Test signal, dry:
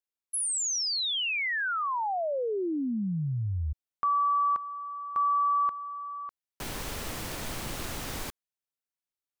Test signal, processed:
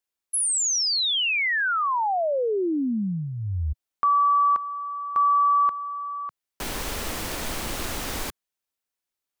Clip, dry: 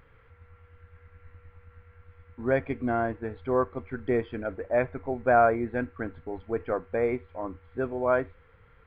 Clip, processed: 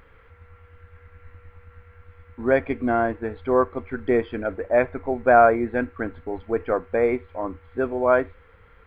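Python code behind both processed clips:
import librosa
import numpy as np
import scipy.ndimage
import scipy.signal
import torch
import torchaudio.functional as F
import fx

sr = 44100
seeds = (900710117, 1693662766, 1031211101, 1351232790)

y = fx.peak_eq(x, sr, hz=130.0, db=-8.0, octaves=0.67)
y = F.gain(torch.from_numpy(y), 6.0).numpy()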